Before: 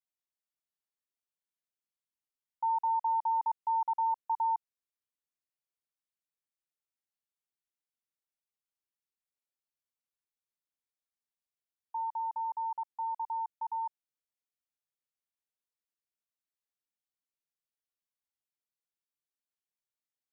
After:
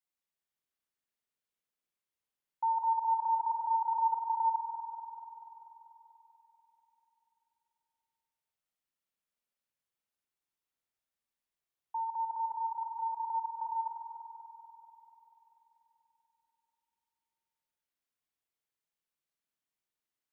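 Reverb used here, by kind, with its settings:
spring reverb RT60 3.8 s, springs 48 ms, chirp 70 ms, DRR −1 dB

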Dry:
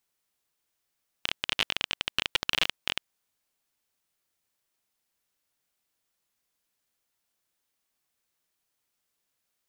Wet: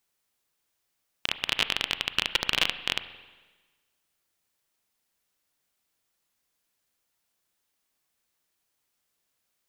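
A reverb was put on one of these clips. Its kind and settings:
spring reverb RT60 1.3 s, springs 34/45 ms, chirp 30 ms, DRR 11.5 dB
level +2 dB

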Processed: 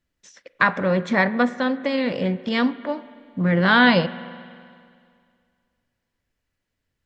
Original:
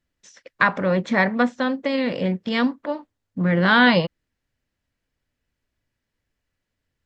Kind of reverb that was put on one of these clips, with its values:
spring reverb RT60 2.2 s, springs 35/45 ms, chirp 35 ms, DRR 15.5 dB

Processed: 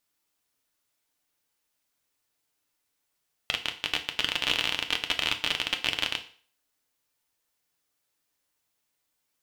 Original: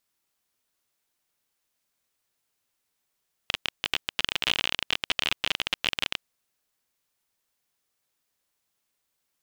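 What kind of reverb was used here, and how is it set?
feedback delay network reverb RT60 0.46 s, low-frequency decay 0.85×, high-frequency decay 0.95×, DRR 5 dB
level −1 dB

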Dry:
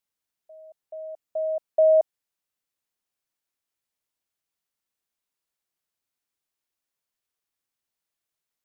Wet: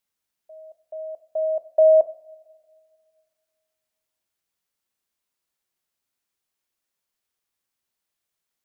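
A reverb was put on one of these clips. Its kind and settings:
coupled-rooms reverb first 0.49 s, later 2.1 s, from −18 dB, DRR 10.5 dB
level +3 dB

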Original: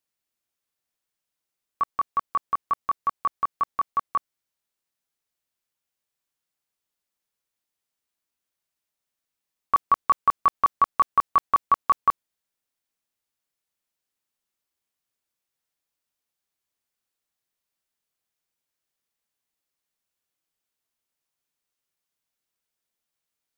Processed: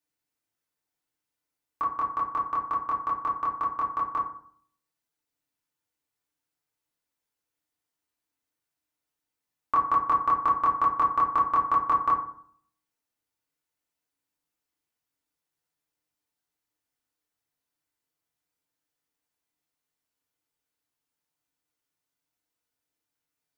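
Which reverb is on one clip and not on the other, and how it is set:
feedback delay network reverb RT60 0.58 s, low-frequency decay 1.25×, high-frequency decay 0.4×, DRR −3 dB
level −5 dB

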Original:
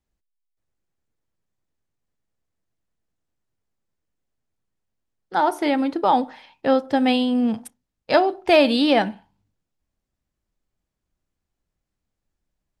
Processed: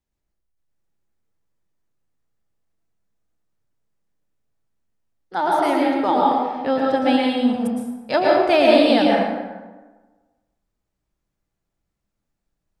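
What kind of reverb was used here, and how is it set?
dense smooth reverb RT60 1.3 s, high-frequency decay 0.55×, pre-delay 100 ms, DRR −3.5 dB
level −3 dB

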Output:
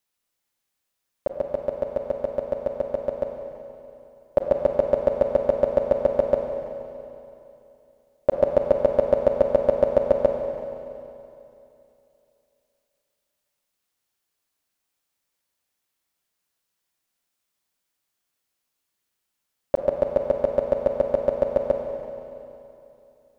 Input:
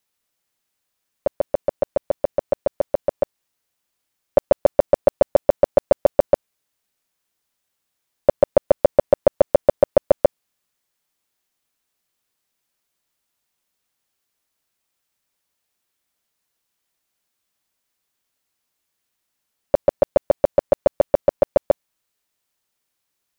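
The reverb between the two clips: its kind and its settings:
four-comb reverb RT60 2.9 s, combs from 32 ms, DRR 3 dB
level −4.5 dB

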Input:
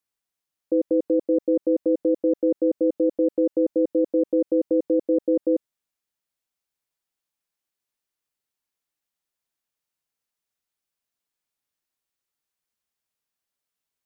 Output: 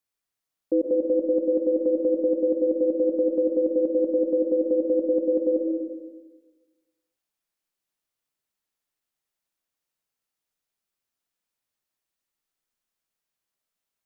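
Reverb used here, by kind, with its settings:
comb and all-pass reverb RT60 1.3 s, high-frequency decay 0.35×, pre-delay 80 ms, DRR 3 dB
level −1 dB

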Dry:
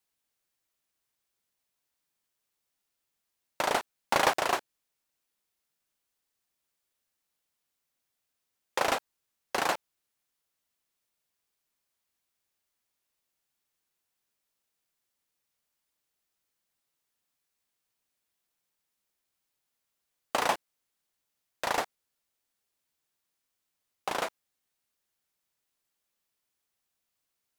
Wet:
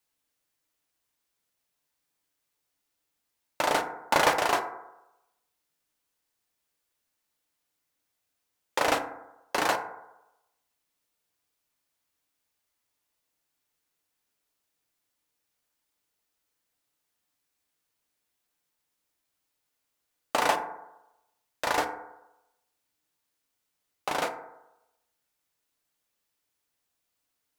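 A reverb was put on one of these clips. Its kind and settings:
feedback delay network reverb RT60 0.92 s, low-frequency decay 0.8×, high-frequency decay 0.3×, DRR 5 dB
level +1.5 dB

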